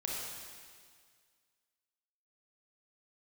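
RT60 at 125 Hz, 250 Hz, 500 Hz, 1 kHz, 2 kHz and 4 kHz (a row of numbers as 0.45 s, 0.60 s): 1.9 s, 1.9 s, 1.9 s, 1.9 s, 1.9 s, 1.9 s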